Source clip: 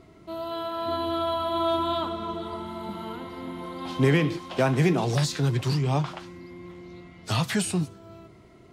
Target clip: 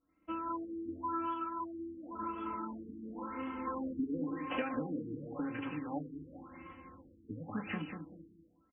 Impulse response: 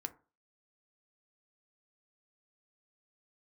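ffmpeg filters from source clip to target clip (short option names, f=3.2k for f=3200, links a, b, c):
-filter_complex "[0:a]agate=range=-33dB:threshold=-37dB:ratio=3:detection=peak[a];[1:a]atrim=start_sample=2205[b];[a][b]afir=irnorm=-1:irlink=0,acompressor=threshold=-35dB:ratio=10,equalizer=f=730:t=o:w=1.2:g=-4,bandreject=f=3.2k:w=5.4,aecho=1:1:3.8:0.92,asplit=3[c][d][e];[c]afade=t=out:st=1.31:d=0.02[f];[d]flanger=delay=2.2:depth=3.8:regen=-53:speed=1.7:shape=triangular,afade=t=in:st=1.31:d=0.02,afade=t=out:st=3.66:d=0.02[g];[e]afade=t=in:st=3.66:d=0.02[h];[f][g][h]amix=inputs=3:normalize=0,lowshelf=f=410:g=-7.5,aecho=1:1:192|384|576|768:0.501|0.15|0.0451|0.0135,afftfilt=real='re*lt(b*sr/1024,440*pow(3400/440,0.5+0.5*sin(2*PI*0.93*pts/sr)))':imag='im*lt(b*sr/1024,440*pow(3400/440,0.5+0.5*sin(2*PI*0.93*pts/sr)))':win_size=1024:overlap=0.75,volume=4.5dB"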